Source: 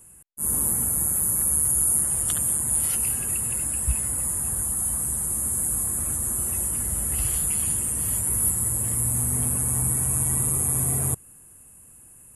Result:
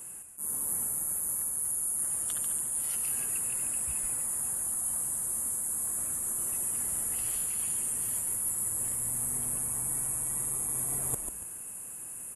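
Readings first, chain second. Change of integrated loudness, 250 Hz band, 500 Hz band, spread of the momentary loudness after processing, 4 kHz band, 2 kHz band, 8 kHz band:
-7.5 dB, -13.0 dB, -9.0 dB, 3 LU, n/a, -6.5 dB, -7.0 dB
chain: HPF 390 Hz 6 dB/oct; reverse; compressor 6:1, threshold -38 dBFS, peak gain reduction 19.5 dB; reverse; frequency-shifting echo 0.142 s, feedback 37%, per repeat -94 Hz, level -6 dB; gain +7 dB

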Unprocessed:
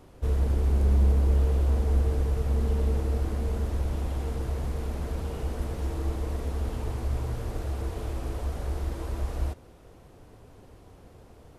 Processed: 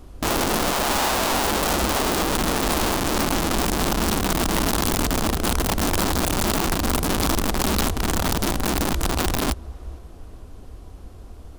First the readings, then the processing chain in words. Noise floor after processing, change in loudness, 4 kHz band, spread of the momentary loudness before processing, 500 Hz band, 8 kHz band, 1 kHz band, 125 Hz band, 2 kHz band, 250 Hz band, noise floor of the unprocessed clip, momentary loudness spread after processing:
-42 dBFS, +7.0 dB, +24.0 dB, 10 LU, +10.0 dB, n/a, +18.5 dB, -1.5 dB, +21.0 dB, +12.5 dB, -52 dBFS, 3 LU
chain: low shelf 140 Hz +10 dB; notch 890 Hz, Q 12; on a send: tape echo 0.457 s, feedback 49%, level -13.5 dB, low-pass 4500 Hz; on the sum: wrapped overs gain 21 dB; ten-band EQ 125 Hz -11 dB, 500 Hz -6 dB, 2000 Hz -5 dB; gain +7.5 dB

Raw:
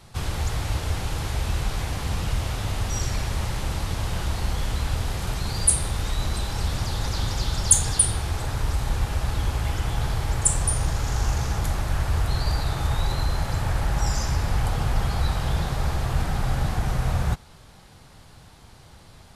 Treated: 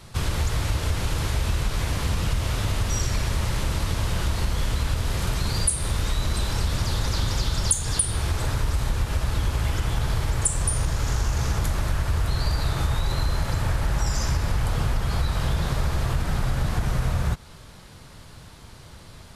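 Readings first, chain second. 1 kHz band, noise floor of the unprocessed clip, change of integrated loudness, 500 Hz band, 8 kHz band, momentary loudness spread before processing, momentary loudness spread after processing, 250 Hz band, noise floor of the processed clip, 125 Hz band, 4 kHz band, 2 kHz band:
-1.0 dB, -49 dBFS, 0.0 dB, +0.5 dB, -3.5 dB, 7 LU, 3 LU, +1.0 dB, -45 dBFS, +1.0 dB, +1.5 dB, +1.0 dB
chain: bell 780 Hz -7.5 dB 0.2 oct; compressor, threshold -23 dBFS, peak gain reduction 12.5 dB; gain +4 dB

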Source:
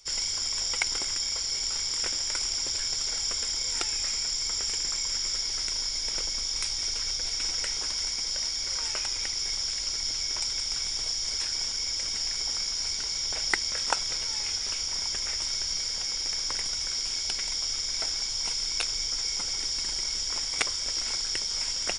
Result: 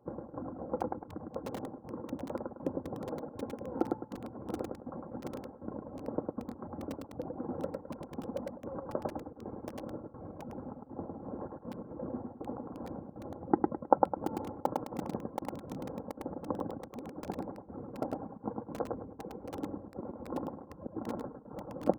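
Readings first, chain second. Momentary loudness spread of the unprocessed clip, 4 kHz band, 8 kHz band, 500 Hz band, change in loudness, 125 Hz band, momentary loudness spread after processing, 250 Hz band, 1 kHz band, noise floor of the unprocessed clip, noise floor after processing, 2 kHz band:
1 LU, -36.5 dB, -35.0 dB, +10.5 dB, -12.0 dB, +4.0 dB, 9 LU, +15.5 dB, +4.5 dB, -32 dBFS, -54 dBFS, -20.0 dB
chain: HPF 130 Hz 24 dB/oct; reverb removal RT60 0.65 s; Gaussian blur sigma 12 samples; low shelf 260 Hz +6 dB; comb 3.7 ms, depth 45%; step gate "xx..xx.xx" 179 bpm -24 dB; on a send: feedback echo 0.105 s, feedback 31%, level -3 dB; on the sum: lo-fi delay 0.727 s, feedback 55%, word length 8-bit, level -8 dB; gain +13 dB

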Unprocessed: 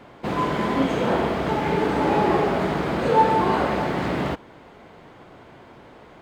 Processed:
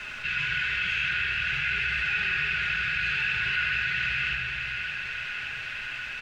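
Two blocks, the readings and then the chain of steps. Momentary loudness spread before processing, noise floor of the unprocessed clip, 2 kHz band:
7 LU, -47 dBFS, +8.0 dB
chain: elliptic band-stop 120–2000 Hz, stop band 40 dB; resonant low shelf 300 Hz -7 dB, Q 3; comb 4.9 ms, depth 44%; in parallel at -3 dB: requantised 8-bit, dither triangular; on the sum: modulation noise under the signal 18 dB; small resonant body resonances 1500/2600 Hz, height 18 dB, ringing for 20 ms; flange 0.5 Hz, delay 2.7 ms, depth 9.4 ms, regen +70%; air absorption 150 m; on a send: thinning echo 0.572 s, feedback 70%, level -12 dB; on the sum: shoebox room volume 3600 m³, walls mixed, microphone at 1.4 m; fast leveller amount 50%

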